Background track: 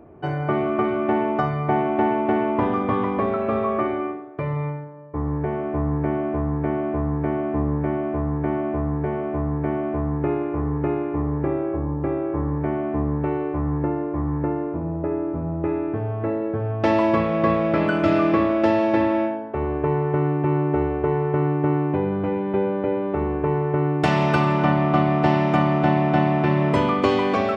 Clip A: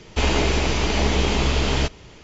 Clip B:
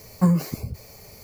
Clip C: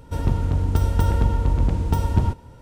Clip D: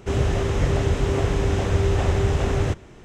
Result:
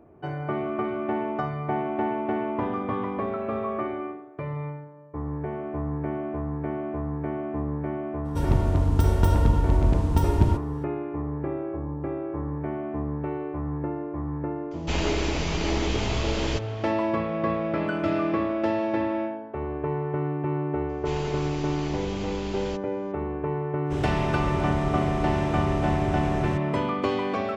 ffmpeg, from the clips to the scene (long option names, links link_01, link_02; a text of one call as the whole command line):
ffmpeg -i bed.wav -i cue0.wav -i cue1.wav -i cue2.wav -i cue3.wav -filter_complex "[1:a]asplit=2[link_01][link_02];[0:a]volume=-6.5dB[link_03];[link_01]asplit=2[link_04][link_05];[link_05]adelay=290,highpass=300,lowpass=3400,asoftclip=type=hard:threshold=-15dB,volume=-12dB[link_06];[link_04][link_06]amix=inputs=2:normalize=0[link_07];[4:a]equalizer=frequency=6900:width_type=o:width=0.32:gain=-4.5[link_08];[3:a]atrim=end=2.61,asetpts=PTS-STARTPTS,volume=-1dB,afade=type=in:duration=0.02,afade=type=out:start_time=2.59:duration=0.02,adelay=8240[link_09];[link_07]atrim=end=2.23,asetpts=PTS-STARTPTS,volume=-7dB,afade=type=in:duration=0.004:curve=hsin,afade=type=out:start_time=2.226:duration=0.004:curve=hsin,adelay=14710[link_10];[link_02]atrim=end=2.23,asetpts=PTS-STARTPTS,volume=-15.5dB,afade=type=in:duration=0.004:curve=hsin,afade=type=out:start_time=2.226:duration=0.004:curve=hsin,adelay=20890[link_11];[link_08]atrim=end=3.04,asetpts=PTS-STARTPTS,volume=-8.5dB,afade=type=in:duration=0.05,afade=type=out:start_time=2.99:duration=0.05,adelay=23840[link_12];[link_03][link_09][link_10][link_11][link_12]amix=inputs=5:normalize=0" out.wav